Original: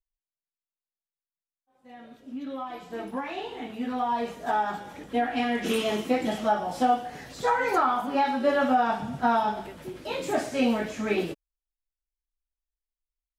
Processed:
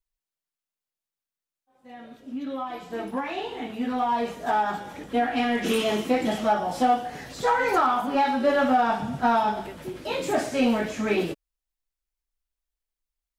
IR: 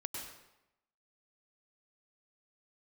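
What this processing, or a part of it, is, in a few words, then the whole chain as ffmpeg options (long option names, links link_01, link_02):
parallel distortion: -filter_complex "[0:a]asplit=2[link_01][link_02];[link_02]asoftclip=type=hard:threshold=-25.5dB,volume=-7dB[link_03];[link_01][link_03]amix=inputs=2:normalize=0"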